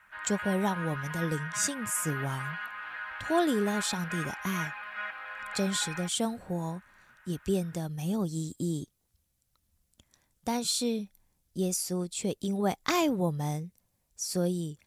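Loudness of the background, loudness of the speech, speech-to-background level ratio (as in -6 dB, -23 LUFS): -37.5 LUFS, -31.5 LUFS, 6.0 dB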